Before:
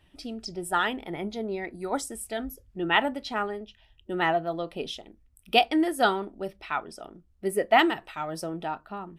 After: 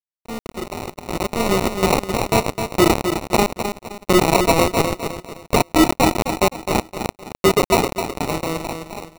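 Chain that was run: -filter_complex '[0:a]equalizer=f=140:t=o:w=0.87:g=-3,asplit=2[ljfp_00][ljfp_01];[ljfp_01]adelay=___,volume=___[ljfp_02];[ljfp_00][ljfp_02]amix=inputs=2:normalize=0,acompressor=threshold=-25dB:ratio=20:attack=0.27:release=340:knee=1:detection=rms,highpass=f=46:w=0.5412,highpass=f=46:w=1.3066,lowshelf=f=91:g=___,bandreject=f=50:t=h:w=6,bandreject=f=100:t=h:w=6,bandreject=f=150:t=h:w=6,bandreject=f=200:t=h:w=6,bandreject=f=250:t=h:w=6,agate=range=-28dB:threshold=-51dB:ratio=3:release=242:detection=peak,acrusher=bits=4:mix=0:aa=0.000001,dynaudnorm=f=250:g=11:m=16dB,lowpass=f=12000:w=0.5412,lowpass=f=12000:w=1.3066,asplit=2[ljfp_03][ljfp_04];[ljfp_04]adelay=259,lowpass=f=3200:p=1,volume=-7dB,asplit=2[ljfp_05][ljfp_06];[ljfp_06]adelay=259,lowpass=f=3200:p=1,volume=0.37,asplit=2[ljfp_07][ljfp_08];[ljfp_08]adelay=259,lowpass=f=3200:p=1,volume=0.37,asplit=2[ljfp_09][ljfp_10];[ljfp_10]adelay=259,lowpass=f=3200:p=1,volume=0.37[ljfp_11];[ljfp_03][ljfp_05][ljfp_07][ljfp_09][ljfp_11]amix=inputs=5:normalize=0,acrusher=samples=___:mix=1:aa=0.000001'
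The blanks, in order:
31, -2.5dB, 10, 27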